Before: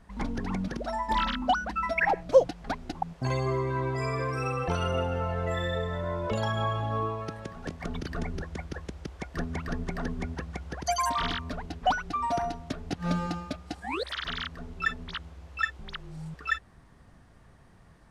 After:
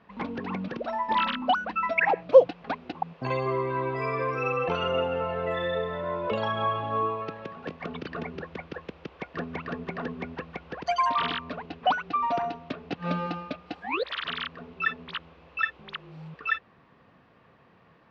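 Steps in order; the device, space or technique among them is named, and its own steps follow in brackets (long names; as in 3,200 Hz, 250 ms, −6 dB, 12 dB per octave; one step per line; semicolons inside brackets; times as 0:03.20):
kitchen radio (loudspeaker in its box 160–4,100 Hz, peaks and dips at 490 Hz +6 dB, 1,100 Hz +5 dB, 2,600 Hz +7 dB)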